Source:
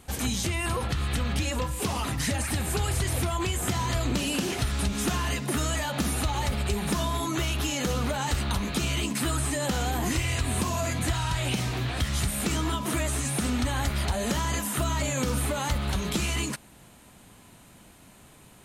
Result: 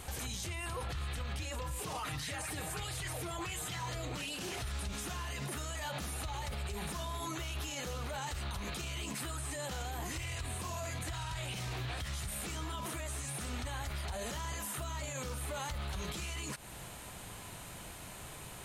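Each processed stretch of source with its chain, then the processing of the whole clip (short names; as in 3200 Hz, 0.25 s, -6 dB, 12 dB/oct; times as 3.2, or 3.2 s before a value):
1.85–4.37 comb 6.5 ms, depth 58% + LFO bell 1.4 Hz 380–4100 Hz +8 dB
whole clip: bell 240 Hz -9 dB 0.92 oct; compressor, threshold -37 dBFS; limiter -37.5 dBFS; gain +6.5 dB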